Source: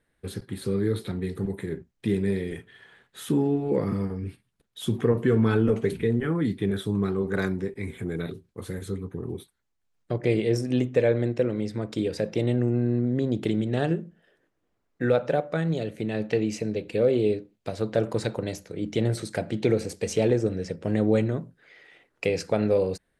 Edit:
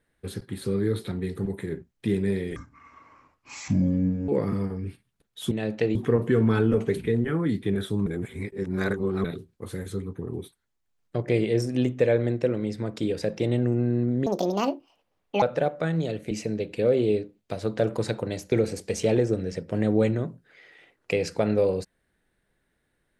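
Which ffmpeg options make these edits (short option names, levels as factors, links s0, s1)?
-filter_complex "[0:a]asplit=11[s0][s1][s2][s3][s4][s5][s6][s7][s8][s9][s10];[s0]atrim=end=2.564[s11];[s1]atrim=start=2.56:end=3.68,asetpts=PTS-STARTPTS,asetrate=28665,aresample=44100[s12];[s2]atrim=start=3.676:end=4.912[s13];[s3]atrim=start=16.028:end=16.472[s14];[s4]atrim=start=4.908:end=7.022[s15];[s5]atrim=start=7.018:end=8.202,asetpts=PTS-STARTPTS,areverse[s16];[s6]atrim=start=8.198:end=13.224[s17];[s7]atrim=start=13.22:end=15.14,asetpts=PTS-STARTPTS,asetrate=73206,aresample=44100,atrim=end_sample=51007,asetpts=PTS-STARTPTS[s18];[s8]atrim=start=15.136:end=16.032[s19];[s9]atrim=start=16.468:end=18.682[s20];[s10]atrim=start=19.648[s21];[s11][s12]acrossfade=d=0.004:c1=hsin:c2=hsin[s22];[s22][s13]acrossfade=d=0.004:c1=hsin:c2=hsin[s23];[s23][s14]acrossfade=d=0.004:c1=hsin:c2=hsin[s24];[s24][s15]acrossfade=d=0.004:c1=hsin:c2=hsin[s25];[s25][s16]acrossfade=d=0.004:c1=hsin:c2=hsin[s26];[s26][s17]acrossfade=d=0.004:c1=hsin:c2=hsin[s27];[s27][s18]acrossfade=d=0.004:c1=hsin:c2=hsin[s28];[s28][s19]acrossfade=d=0.004:c1=hsin:c2=hsin[s29];[s29][s20]acrossfade=d=0.004:c1=hsin:c2=hsin[s30];[s30][s21]acrossfade=d=0.004:c1=hsin:c2=hsin"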